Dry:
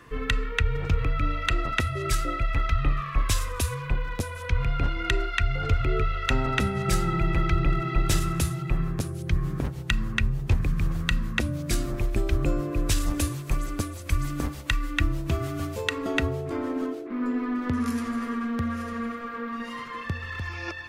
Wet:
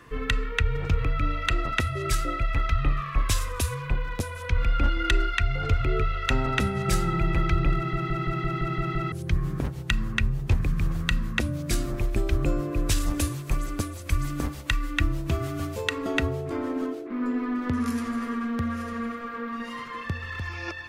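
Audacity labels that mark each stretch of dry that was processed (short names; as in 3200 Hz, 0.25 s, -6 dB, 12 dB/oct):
4.570000	5.340000	comb 3.5 ms, depth 68%
7.760000	7.760000	stutter in place 0.17 s, 8 plays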